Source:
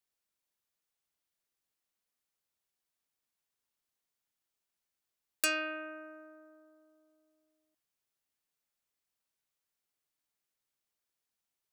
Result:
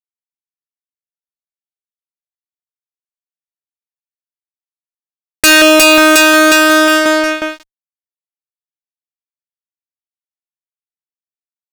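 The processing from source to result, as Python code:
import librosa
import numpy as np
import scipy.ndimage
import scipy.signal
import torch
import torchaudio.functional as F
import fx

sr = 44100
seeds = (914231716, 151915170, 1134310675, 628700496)

y = fx.echo_alternate(x, sr, ms=180, hz=1600.0, feedback_pct=78, wet_db=-5.5)
y = fx.env_lowpass(y, sr, base_hz=420.0, full_db=-35.0)
y = fx.fuzz(y, sr, gain_db=55.0, gate_db=-54.0)
y = y * librosa.db_to_amplitude(8.0)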